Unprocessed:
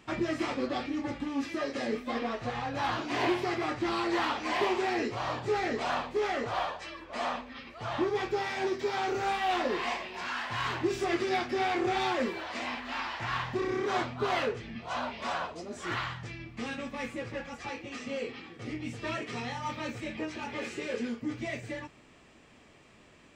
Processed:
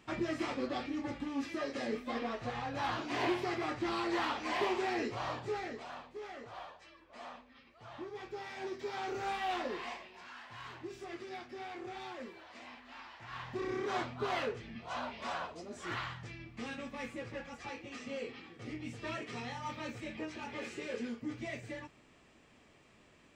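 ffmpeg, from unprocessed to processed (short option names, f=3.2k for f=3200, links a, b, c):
-af "volume=15dB,afade=t=out:st=5.24:d=0.63:silence=0.281838,afade=t=in:st=8.09:d=1.33:silence=0.334965,afade=t=out:st=9.42:d=0.82:silence=0.334965,afade=t=in:st=13.27:d=0.41:silence=0.316228"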